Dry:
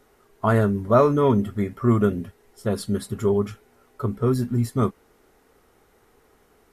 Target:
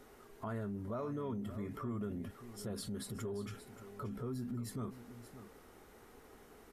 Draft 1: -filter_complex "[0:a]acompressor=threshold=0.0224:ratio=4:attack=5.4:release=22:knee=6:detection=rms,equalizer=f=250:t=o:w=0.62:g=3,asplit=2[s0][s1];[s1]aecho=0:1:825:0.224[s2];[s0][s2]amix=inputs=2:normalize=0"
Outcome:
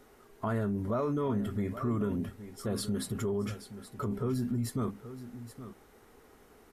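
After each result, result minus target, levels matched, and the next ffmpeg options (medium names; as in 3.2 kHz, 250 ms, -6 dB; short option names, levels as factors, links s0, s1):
compression: peak gain reduction -9 dB; echo 247 ms late
-filter_complex "[0:a]acompressor=threshold=0.00562:ratio=4:attack=5.4:release=22:knee=6:detection=rms,equalizer=f=250:t=o:w=0.62:g=3,asplit=2[s0][s1];[s1]aecho=0:1:825:0.224[s2];[s0][s2]amix=inputs=2:normalize=0"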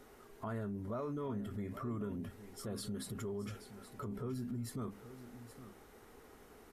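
echo 247 ms late
-filter_complex "[0:a]acompressor=threshold=0.00562:ratio=4:attack=5.4:release=22:knee=6:detection=rms,equalizer=f=250:t=o:w=0.62:g=3,asplit=2[s0][s1];[s1]aecho=0:1:578:0.224[s2];[s0][s2]amix=inputs=2:normalize=0"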